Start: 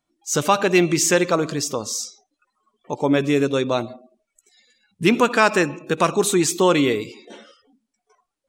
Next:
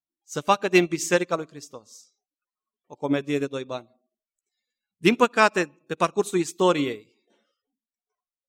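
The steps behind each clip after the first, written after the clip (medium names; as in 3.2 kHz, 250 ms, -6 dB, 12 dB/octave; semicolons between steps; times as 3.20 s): upward expansion 2.5:1, over -29 dBFS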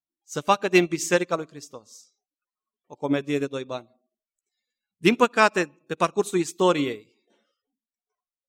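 no audible change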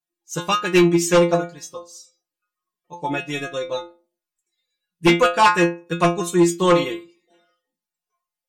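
inharmonic resonator 170 Hz, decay 0.32 s, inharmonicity 0.002; sine folder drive 7 dB, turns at -15.5 dBFS; small resonant body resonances 1.1/1.7/2.7 kHz, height 9 dB, ringing for 100 ms; trim +7 dB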